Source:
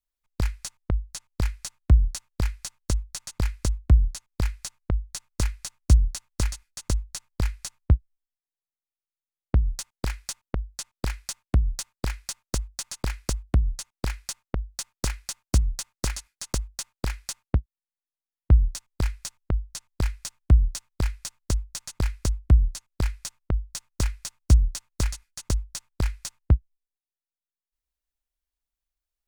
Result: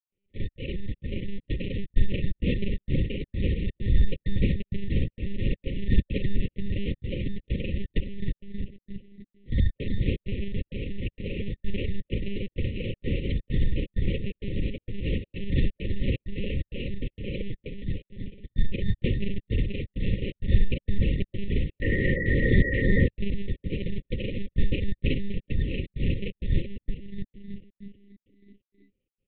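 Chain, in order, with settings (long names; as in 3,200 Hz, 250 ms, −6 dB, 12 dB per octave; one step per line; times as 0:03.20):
every overlapping window played backwards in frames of 109 ms
transient designer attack −9 dB, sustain +10 dB
in parallel at +2 dB: downward compressor 12 to 1, threshold −33 dBFS, peak gain reduction 18.5 dB
on the sum: sample-rate reduction 1,800 Hz, jitter 0%
echo with shifted repeats 325 ms, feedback 52%, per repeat +31 Hz, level −3 dB
gate pattern ".xxx.xxx" 130 BPM −60 dB
sound drawn into the spectrogram noise, 0:21.82–0:23.07, 250–2,000 Hz −23 dBFS
one-pitch LPC vocoder at 8 kHz 200 Hz
linear-phase brick-wall band-stop 570–1,800 Hz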